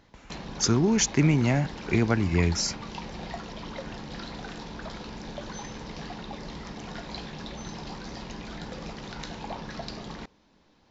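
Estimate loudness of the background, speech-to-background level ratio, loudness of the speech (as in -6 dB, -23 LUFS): -39.0 LUFS, 14.5 dB, -24.5 LUFS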